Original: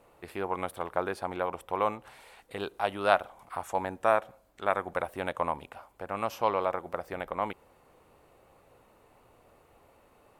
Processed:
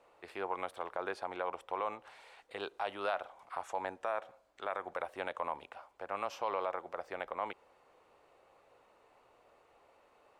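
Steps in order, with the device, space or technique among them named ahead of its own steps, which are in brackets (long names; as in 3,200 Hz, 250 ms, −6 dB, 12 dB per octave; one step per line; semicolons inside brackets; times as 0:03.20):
DJ mixer with the lows and highs turned down (three-way crossover with the lows and the highs turned down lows −13 dB, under 360 Hz, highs −17 dB, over 7,700 Hz; brickwall limiter −20.5 dBFS, peak gain reduction 11.5 dB)
level −3 dB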